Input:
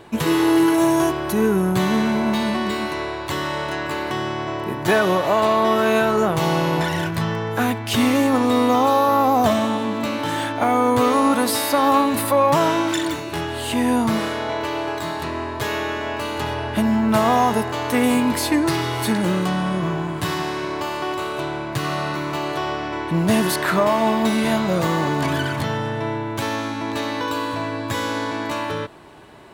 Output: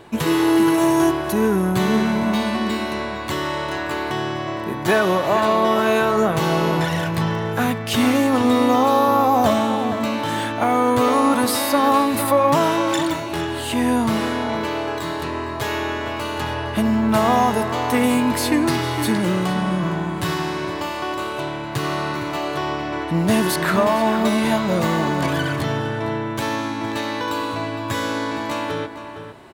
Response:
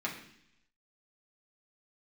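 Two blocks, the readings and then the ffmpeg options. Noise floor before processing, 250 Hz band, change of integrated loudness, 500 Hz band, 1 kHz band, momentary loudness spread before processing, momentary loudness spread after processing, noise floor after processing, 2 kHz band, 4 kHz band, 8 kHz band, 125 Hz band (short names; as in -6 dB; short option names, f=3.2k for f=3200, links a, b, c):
-28 dBFS, +0.5 dB, +0.5 dB, +0.5 dB, +0.5 dB, 9 LU, 9 LU, -28 dBFS, +0.5 dB, 0.0 dB, 0.0 dB, +0.5 dB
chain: -filter_complex "[0:a]asplit=2[a][b];[b]adelay=460.6,volume=-9dB,highshelf=f=4k:g=-10.4[c];[a][c]amix=inputs=2:normalize=0"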